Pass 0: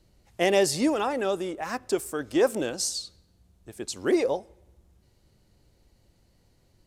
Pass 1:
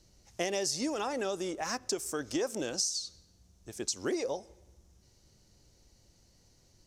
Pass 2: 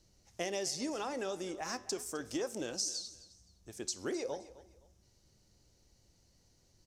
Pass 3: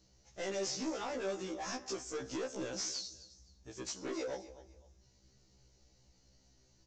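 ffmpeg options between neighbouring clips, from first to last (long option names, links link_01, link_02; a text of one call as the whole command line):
ffmpeg -i in.wav -af "equalizer=frequency=5900:width=1.8:gain=14,acompressor=threshold=-28dB:ratio=5,volume=-2dB" out.wav
ffmpeg -i in.wav -af "flanger=delay=9.3:depth=3:regen=-85:speed=0.38:shape=sinusoidal,aecho=1:1:259|518:0.126|0.0352" out.wav
ffmpeg -i in.wav -af "aresample=16000,asoftclip=type=hard:threshold=-37dB,aresample=44100,afftfilt=real='re*1.73*eq(mod(b,3),0)':imag='im*1.73*eq(mod(b,3),0)':win_size=2048:overlap=0.75,volume=3.5dB" out.wav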